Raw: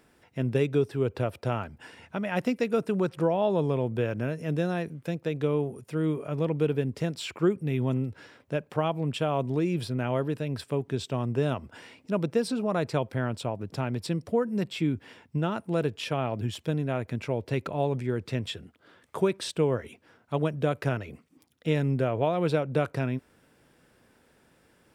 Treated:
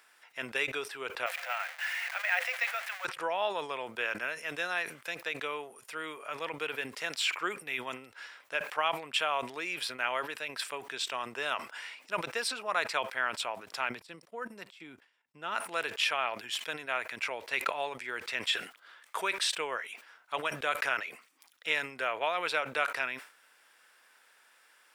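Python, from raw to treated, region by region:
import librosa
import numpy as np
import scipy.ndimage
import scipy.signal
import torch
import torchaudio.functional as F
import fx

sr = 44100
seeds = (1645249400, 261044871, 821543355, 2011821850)

y = fx.chain(x, sr, fx.zero_step(step_db=-34.5),
    fx.cheby_ripple_highpass(hz=500.0, ripple_db=9),
    fx.resample_bad(factor=2, down='none', up='hold'), at=(1.26, 3.05))
y = fx.chain(y, sr, fx.low_shelf(hz=400.0, db=10.5),
    fx.level_steps(step_db=13),
    fx.upward_expand(threshold_db=-41.0, expansion=2.5), at=(13.89, 15.55))
y = scipy.signal.sosfilt(scipy.signal.cheby1(2, 1.0, 1300.0, 'highpass', fs=sr, output='sos'), y)
y = fx.dynamic_eq(y, sr, hz=2200.0, q=1.4, threshold_db=-51.0, ratio=4.0, max_db=4)
y = fx.sustainer(y, sr, db_per_s=130.0)
y = y * 10.0 ** (5.0 / 20.0)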